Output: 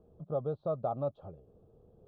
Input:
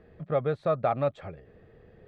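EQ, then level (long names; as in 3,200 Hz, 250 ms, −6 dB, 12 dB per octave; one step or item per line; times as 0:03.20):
Butterworth band-reject 2,000 Hz, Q 0.73
low-pass filter 3,500 Hz 12 dB per octave
high-frequency loss of the air 170 metres
−6.0 dB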